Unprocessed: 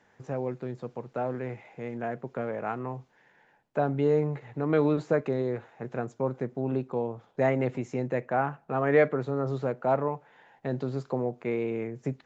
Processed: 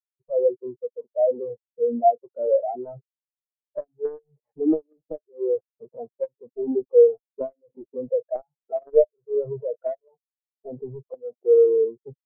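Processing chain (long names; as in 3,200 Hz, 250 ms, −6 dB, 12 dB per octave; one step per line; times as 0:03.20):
stylus tracing distortion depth 0.35 ms
parametric band 630 Hz +6 dB 0.81 octaves
in parallel at −8 dB: soft clipping −20.5 dBFS, distortion −10 dB
on the sum: log-companded quantiser 2 bits
parametric band 100 Hz −8 dB 1.5 octaves
downward compressor 8 to 1, threshold −23 dBFS, peak gain reduction 19.5 dB
every bin expanded away from the loudest bin 4 to 1
level −3 dB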